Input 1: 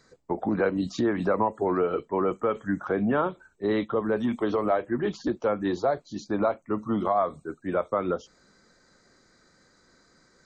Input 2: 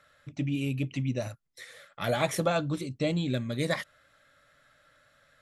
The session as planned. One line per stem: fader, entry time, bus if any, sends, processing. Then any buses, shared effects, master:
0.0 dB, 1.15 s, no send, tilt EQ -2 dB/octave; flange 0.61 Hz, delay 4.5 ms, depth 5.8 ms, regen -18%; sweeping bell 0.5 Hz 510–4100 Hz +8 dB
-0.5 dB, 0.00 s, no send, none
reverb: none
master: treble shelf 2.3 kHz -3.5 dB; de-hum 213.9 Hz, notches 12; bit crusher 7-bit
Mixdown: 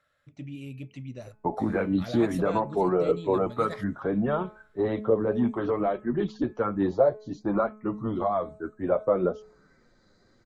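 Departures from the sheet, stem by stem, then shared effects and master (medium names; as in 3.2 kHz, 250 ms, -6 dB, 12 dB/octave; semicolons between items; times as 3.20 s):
stem 2 -0.5 dB -> -9.0 dB; master: missing bit crusher 7-bit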